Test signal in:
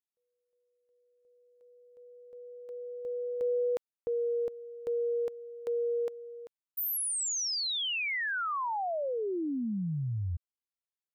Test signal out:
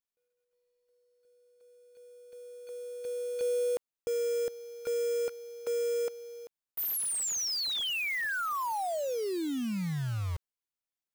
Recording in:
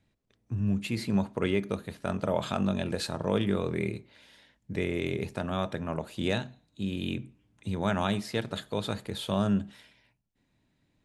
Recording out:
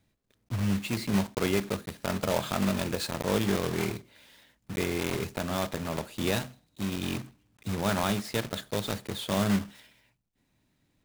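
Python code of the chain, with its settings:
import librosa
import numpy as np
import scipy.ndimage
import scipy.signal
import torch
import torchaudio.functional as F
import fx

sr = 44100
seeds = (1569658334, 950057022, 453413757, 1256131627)

y = fx.block_float(x, sr, bits=3)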